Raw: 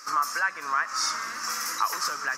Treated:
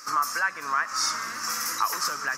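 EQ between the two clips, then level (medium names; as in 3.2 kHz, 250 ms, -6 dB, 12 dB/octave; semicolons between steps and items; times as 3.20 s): bass shelf 64 Hz +5.5 dB; bass shelf 240 Hz +6.5 dB; treble shelf 8.9 kHz +5.5 dB; 0.0 dB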